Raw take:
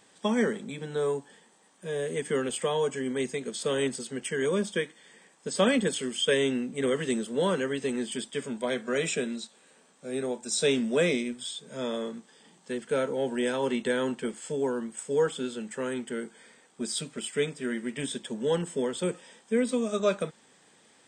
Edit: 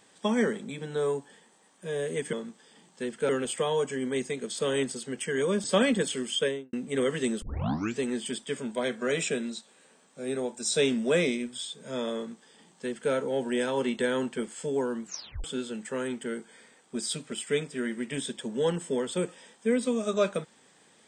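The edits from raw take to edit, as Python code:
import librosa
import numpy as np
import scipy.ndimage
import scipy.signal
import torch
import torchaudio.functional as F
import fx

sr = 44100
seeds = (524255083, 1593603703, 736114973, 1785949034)

y = fx.studio_fade_out(x, sr, start_s=6.18, length_s=0.41)
y = fx.edit(y, sr, fx.cut(start_s=4.68, length_s=0.82),
    fx.tape_start(start_s=7.28, length_s=0.57),
    fx.duplicate(start_s=12.02, length_s=0.96, to_s=2.33),
    fx.tape_stop(start_s=14.9, length_s=0.4), tone=tone)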